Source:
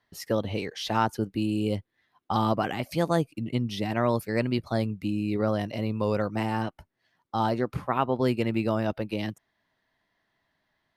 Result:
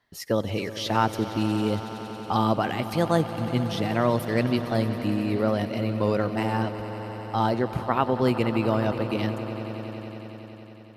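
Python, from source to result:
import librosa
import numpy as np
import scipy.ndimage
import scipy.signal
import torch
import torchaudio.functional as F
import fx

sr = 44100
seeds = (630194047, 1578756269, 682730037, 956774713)

y = fx.echo_swell(x, sr, ms=92, loudest=5, wet_db=-16.5)
y = y * librosa.db_to_amplitude(2.0)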